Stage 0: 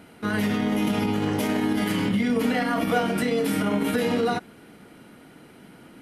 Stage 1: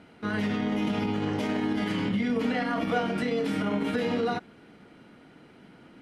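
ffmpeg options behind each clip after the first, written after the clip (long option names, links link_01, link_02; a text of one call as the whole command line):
ffmpeg -i in.wav -af "lowpass=5400,volume=-4dB" out.wav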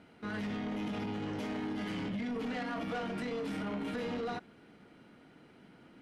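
ffmpeg -i in.wav -af "asoftclip=type=tanh:threshold=-27dB,volume=-5.5dB" out.wav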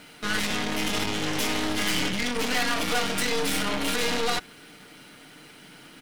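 ffmpeg -i in.wav -af "aecho=1:1:6.7:0.33,crystalizer=i=10:c=0,aeval=exprs='0.133*(cos(1*acos(clip(val(0)/0.133,-1,1)))-cos(1*PI/2))+0.0237*(cos(8*acos(clip(val(0)/0.133,-1,1)))-cos(8*PI/2))':channel_layout=same,volume=4.5dB" out.wav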